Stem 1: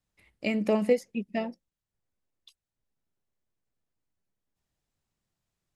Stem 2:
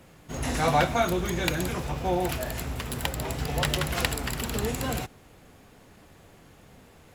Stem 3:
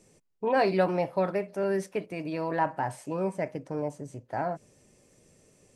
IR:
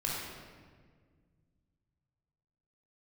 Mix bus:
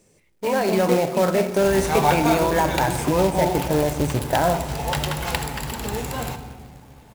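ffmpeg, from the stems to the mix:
-filter_complex "[0:a]volume=-4dB[a];[1:a]equalizer=f=860:w=6.5:g=12.5,adelay=1300,volume=-5.5dB,asplit=2[b][c];[c]volume=-11.5dB[d];[2:a]dynaudnorm=f=150:g=11:m=11.5dB,alimiter=limit=-16.5dB:level=0:latency=1:release=124,acontrast=34,volume=-5dB,asplit=2[e][f];[f]volume=-14dB[g];[3:a]atrim=start_sample=2205[h];[d][g]amix=inputs=2:normalize=0[i];[i][h]afir=irnorm=-1:irlink=0[j];[a][b][e][j]amix=inputs=4:normalize=0,dynaudnorm=f=310:g=5:m=4dB,acrusher=bits=3:mode=log:mix=0:aa=0.000001"

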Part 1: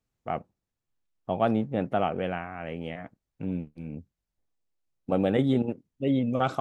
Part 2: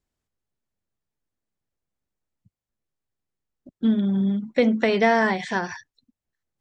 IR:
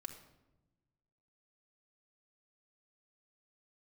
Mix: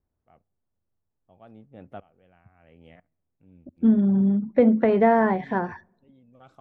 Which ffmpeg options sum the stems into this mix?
-filter_complex "[0:a]aeval=exprs='val(0)*pow(10,-24*if(lt(mod(-1*n/s,1),2*abs(-1)/1000),1-mod(-1*n/s,1)/(2*abs(-1)/1000),(mod(-1*n/s,1)-2*abs(-1)/1000)/(1-2*abs(-1)/1000))/20)':c=same,volume=-13dB,asplit=2[a][b];[b]volume=-22dB[c];[1:a]lowpass=1.1k,volume=1.5dB,asplit=2[d][e];[e]volume=-18.5dB[f];[2:a]atrim=start_sample=2205[g];[c][f]amix=inputs=2:normalize=0[h];[h][g]afir=irnorm=-1:irlink=0[i];[a][d][i]amix=inputs=3:normalize=0,equalizer=f=85:w=2.6:g=8"

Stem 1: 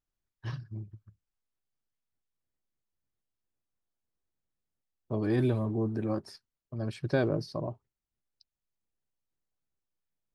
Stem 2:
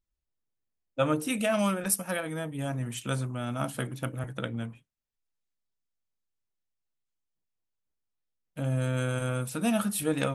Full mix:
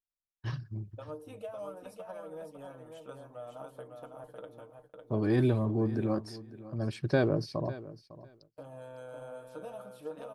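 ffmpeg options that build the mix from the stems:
-filter_complex "[0:a]volume=1dB,asplit=2[a][b];[b]volume=-17dB[c];[1:a]equalizer=f=125:t=o:w=1:g=-11,equalizer=f=250:t=o:w=1:g=-5,equalizer=f=500:t=o:w=1:g=11,equalizer=f=1k:t=o:w=1:g=9,equalizer=f=2k:t=o:w=1:g=-8,equalizer=f=8k:t=o:w=1:g=-9,acrossover=split=960|6400[d][e][f];[d]acompressor=threshold=-27dB:ratio=4[g];[e]acompressor=threshold=-43dB:ratio=4[h];[f]acompressor=threshold=-55dB:ratio=4[i];[g][h][i]amix=inputs=3:normalize=0,aecho=1:1:6.6:0.63,volume=-15.5dB,asplit=2[j][k];[k]volume=-5dB[l];[c][l]amix=inputs=2:normalize=0,aecho=0:1:553|1106|1659:1|0.16|0.0256[m];[a][j][m]amix=inputs=3:normalize=0,agate=range=-20dB:threshold=-58dB:ratio=16:detection=peak"

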